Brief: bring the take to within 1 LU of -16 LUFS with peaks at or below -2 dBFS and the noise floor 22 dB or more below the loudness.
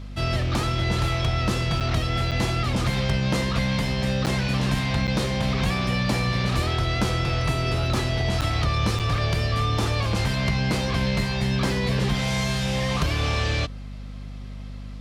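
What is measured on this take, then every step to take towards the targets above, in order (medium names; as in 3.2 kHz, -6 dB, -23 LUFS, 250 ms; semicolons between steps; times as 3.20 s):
dropouts 6; longest dropout 7.2 ms; hum 50 Hz; highest harmonic 250 Hz; hum level -33 dBFS; loudness -24.0 LUFS; peak level -11.5 dBFS; loudness target -16.0 LUFS
-> interpolate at 1.80/2.31/4.26/5.07/8.41/8.99 s, 7.2 ms; de-hum 50 Hz, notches 5; trim +8 dB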